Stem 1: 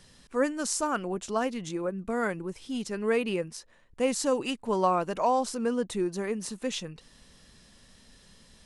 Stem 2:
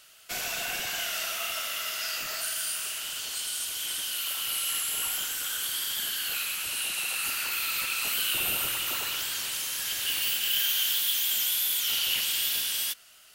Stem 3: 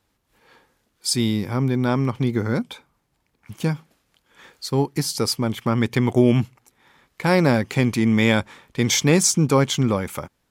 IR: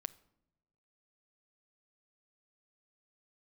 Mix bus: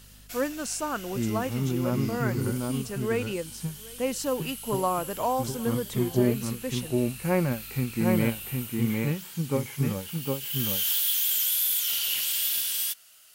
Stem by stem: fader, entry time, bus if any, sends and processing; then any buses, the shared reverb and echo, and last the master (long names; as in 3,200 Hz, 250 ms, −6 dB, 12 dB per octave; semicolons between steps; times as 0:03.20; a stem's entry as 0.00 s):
−2.0 dB, 0.00 s, no send, echo send −22 dB, mains hum 50 Hz, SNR 21 dB
−5.0 dB, 0.00 s, no send, no echo send, high-shelf EQ 5,900 Hz +9 dB; automatic ducking −12 dB, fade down 0.35 s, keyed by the third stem
−5.5 dB, 0.00 s, no send, echo send −3 dB, elliptic low-pass filter 2,800 Hz; harmonic and percussive parts rebalanced percussive −17 dB; every ending faded ahead of time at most 210 dB per second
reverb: not used
echo: single-tap delay 759 ms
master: no processing